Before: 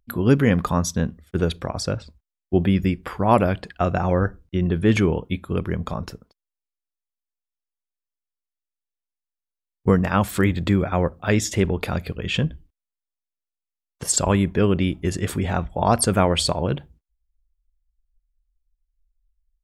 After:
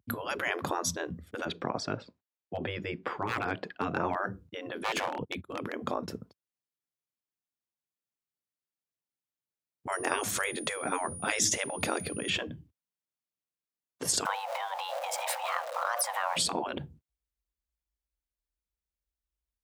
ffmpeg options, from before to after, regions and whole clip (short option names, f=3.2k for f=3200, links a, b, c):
-filter_complex "[0:a]asettb=1/sr,asplit=3[a][b][c];[a]atrim=end=1.454[d];[b]atrim=start=1.45:end=4.15,asetpts=PTS-STARTPTS,afade=t=in:d=0.004:c=qsin,afade=t=out:st=2.696:d=0.004:c=qsin,highpass=360,lowpass=6.5k,aemphasis=mode=reproduction:type=cd,aeval=exprs='clip(val(0),-1,0.237)':c=same[e];[c]atrim=start=4.146[f];[d][e]acrossfade=d=0.004:c1=hsin:c2=qsin[g];[g][f]acrossfade=d=0.004:c1=qsin:c2=hsin,asettb=1/sr,asplit=3[h][i][j];[h]atrim=end=4.814[k];[i]atrim=start=4.81:end=6.1,asetpts=PTS-STARTPTS,afade=t=in:d=0.004:c=qsin,afade=t=out:st=1.286:d=0.004:c=qsin,agate=range=-28dB:threshold=-37dB:ratio=16:release=100:detection=peak,aeval=exprs='0.188*(abs(mod(val(0)/0.188+3,4)-2)-1)':c=same[l];[j]atrim=start=6.096[m];[k][l]acrossfade=d=0.004:c1=hsin:c2=qsin[n];[n][m]acrossfade=d=0.004:c1=qsin:c2=hsin,asettb=1/sr,asplit=3[o][p][q];[o]atrim=end=9.924[r];[p]atrim=start=9.92:end=12.3,asetpts=PTS-STARTPTS,afade=t=in:d=0.004:c=qsin,afade=t=out:st=2.376:d=0.004:c=qsin,equalizer=f=6.3k:t=o:w=0.45:g=13,aeval=exprs='val(0)+0.0126*sin(2*PI*9600*n/s)':c=same[s];[q]atrim=start=12.296[t];[r][s]acrossfade=d=0.004:c1=hsin:c2=qsin[u];[u][t]acrossfade=d=0.004:c1=qsin:c2=hsin,asettb=1/sr,asplit=3[v][w][x];[v]atrim=end=14.254[y];[w]atrim=start=14.25:end=16.37,asetpts=PTS-STARTPTS,afade=t=in:d=0.004:c=qsin,afade=t=out:st=2.116:d=0.004:c=qsin,aeval=exprs='val(0)+0.5*0.0282*sgn(val(0))':c=same,acompressor=threshold=-21dB:ratio=12:attack=3.2:release=140:knee=1:detection=peak,afreqshift=480[z];[x]atrim=start=16.366[aa];[y][z]acrossfade=d=0.004:c1=hsin:c2=qsin[ab];[ab][aa]acrossfade=d=0.004:c1=qsin:c2=hsin,lowshelf=f=380:g=11,afftfilt=real='re*lt(hypot(re,im),0.316)':imag='im*lt(hypot(re,im),0.316)':win_size=1024:overlap=0.75,highpass=f=94:w=0.5412,highpass=f=94:w=1.3066,volume=-3dB"